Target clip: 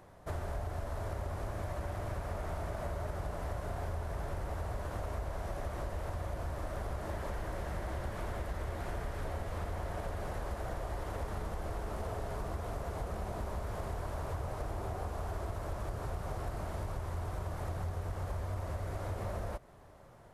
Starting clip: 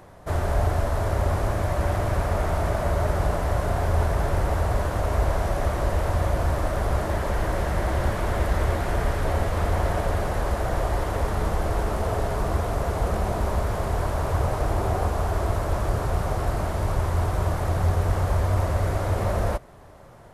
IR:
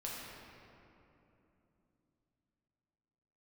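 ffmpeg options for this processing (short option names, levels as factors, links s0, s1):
-af "acompressor=threshold=0.0562:ratio=6,volume=0.355"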